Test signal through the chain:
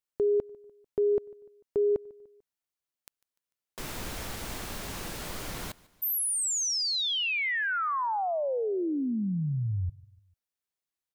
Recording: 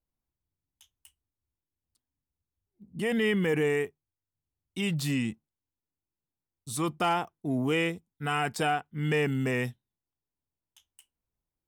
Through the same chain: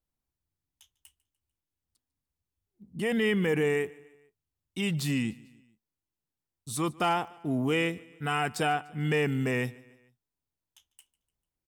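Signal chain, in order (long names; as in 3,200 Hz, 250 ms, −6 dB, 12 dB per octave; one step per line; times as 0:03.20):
repeating echo 148 ms, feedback 51%, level −23 dB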